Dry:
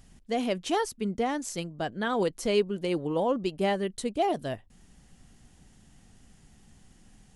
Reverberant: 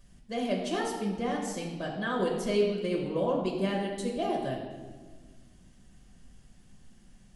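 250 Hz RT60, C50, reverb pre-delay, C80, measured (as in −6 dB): 2.0 s, 4.0 dB, 5 ms, 5.5 dB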